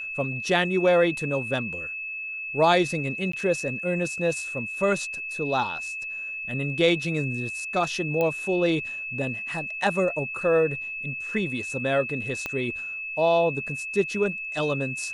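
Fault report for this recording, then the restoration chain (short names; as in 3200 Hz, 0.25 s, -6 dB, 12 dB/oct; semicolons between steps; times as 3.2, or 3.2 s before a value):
tone 2600 Hz -31 dBFS
3.32–3.33 gap 14 ms
8.21 pop -14 dBFS
12.46 pop -15 dBFS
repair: de-click; notch 2600 Hz, Q 30; interpolate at 3.32, 14 ms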